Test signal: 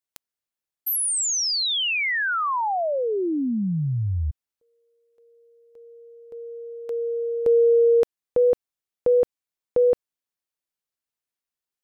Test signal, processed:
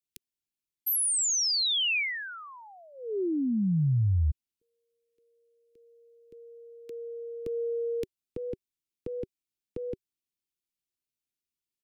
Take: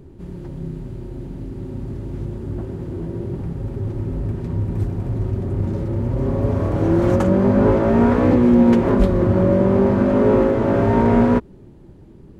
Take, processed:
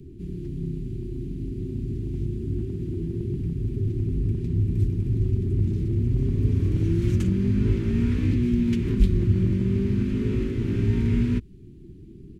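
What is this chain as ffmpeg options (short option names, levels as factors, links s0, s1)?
-filter_complex "[0:a]firequalizer=gain_entry='entry(380,0);entry(580,-29);entry(2400,-3)':delay=0.05:min_phase=1,acrossover=split=160|1100[s0][s1][s2];[s1]acompressor=threshold=0.0447:ratio=6:attack=0.69:release=405:knee=6:detection=rms[s3];[s0][s3][s2]amix=inputs=3:normalize=0"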